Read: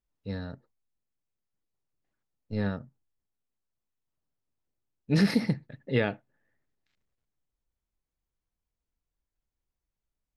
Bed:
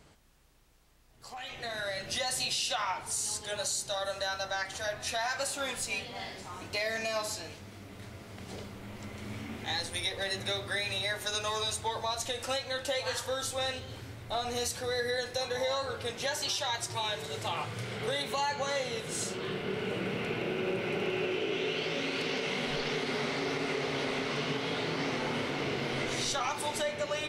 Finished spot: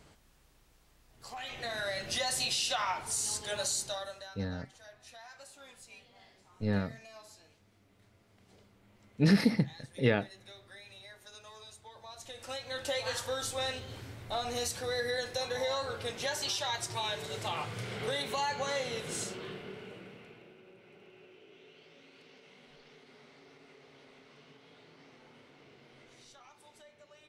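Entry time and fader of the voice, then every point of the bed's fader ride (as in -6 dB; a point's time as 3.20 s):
4.10 s, -1.0 dB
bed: 3.83 s 0 dB
4.41 s -19 dB
11.90 s -19 dB
12.88 s -1.5 dB
19.13 s -1.5 dB
20.64 s -25 dB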